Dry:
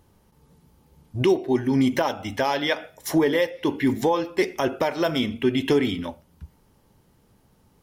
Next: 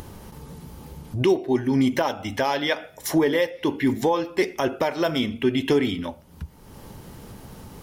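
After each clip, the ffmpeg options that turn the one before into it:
-af "acompressor=mode=upward:threshold=-25dB:ratio=2.5"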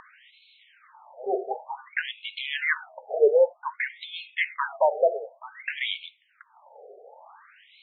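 -af "afftfilt=real='re*between(b*sr/1024,540*pow(3100/540,0.5+0.5*sin(2*PI*0.54*pts/sr))/1.41,540*pow(3100/540,0.5+0.5*sin(2*PI*0.54*pts/sr))*1.41)':imag='im*between(b*sr/1024,540*pow(3100/540,0.5+0.5*sin(2*PI*0.54*pts/sr))/1.41,540*pow(3100/540,0.5+0.5*sin(2*PI*0.54*pts/sr))*1.41)':win_size=1024:overlap=0.75,volume=4.5dB"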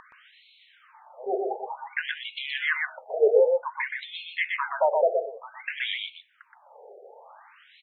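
-af "aecho=1:1:122:0.668,volume=-1.5dB"

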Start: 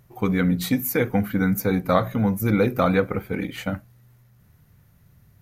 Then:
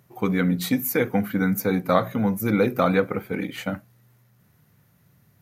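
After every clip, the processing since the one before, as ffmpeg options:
-af "highpass=140"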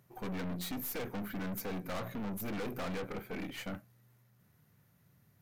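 -af "aeval=exprs='(tanh(35.5*val(0)+0.5)-tanh(0.5))/35.5':c=same,volume=-5.5dB"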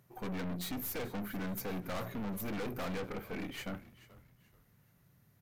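-filter_complex "[0:a]asplit=4[a][b][c][d];[b]adelay=432,afreqshift=-76,volume=-18dB[e];[c]adelay=864,afreqshift=-152,volume=-28.2dB[f];[d]adelay=1296,afreqshift=-228,volume=-38.3dB[g];[a][e][f][g]amix=inputs=4:normalize=0"

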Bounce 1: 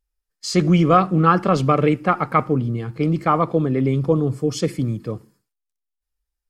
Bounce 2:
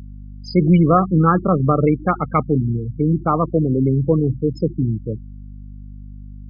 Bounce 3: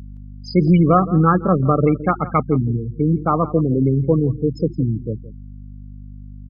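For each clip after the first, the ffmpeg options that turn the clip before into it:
-af "lowshelf=f=450:g=5.5,afftfilt=real='re*gte(hypot(re,im),0.158)':imag='im*gte(hypot(re,im),0.158)':win_size=1024:overlap=0.75,aeval=exprs='val(0)+0.0251*(sin(2*PI*50*n/s)+sin(2*PI*2*50*n/s)/2+sin(2*PI*3*50*n/s)/3+sin(2*PI*4*50*n/s)/4+sin(2*PI*5*50*n/s)/5)':c=same,volume=-2dB"
-af "aecho=1:1:168:0.141"

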